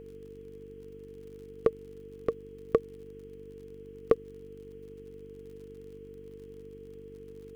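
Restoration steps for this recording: de-click; de-hum 48.6 Hz, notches 9; band-stop 450 Hz, Q 30; noise reduction 30 dB, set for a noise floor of -48 dBFS

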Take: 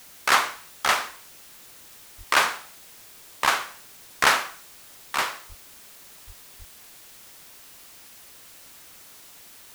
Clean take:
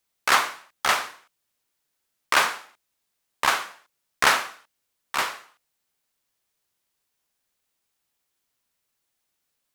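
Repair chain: de-plosive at 2.17/5.48/6.26/6.58 s; noise print and reduce 30 dB

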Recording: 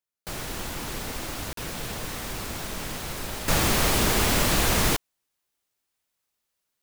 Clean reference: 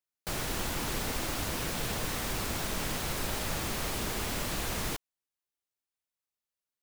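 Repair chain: interpolate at 1.53 s, 43 ms; trim 0 dB, from 3.48 s -11.5 dB

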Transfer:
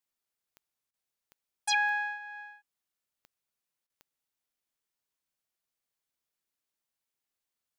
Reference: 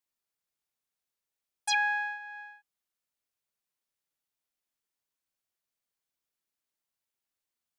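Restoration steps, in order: de-click; interpolate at 0.91/3.87 s, 26 ms

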